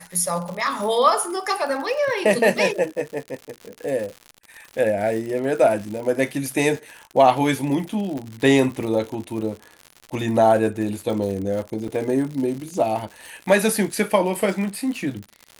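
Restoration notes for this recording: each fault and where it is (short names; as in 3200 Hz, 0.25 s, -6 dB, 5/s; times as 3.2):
crackle 110/s -29 dBFS
8.18 pop -20 dBFS
11.88 gap 4.1 ms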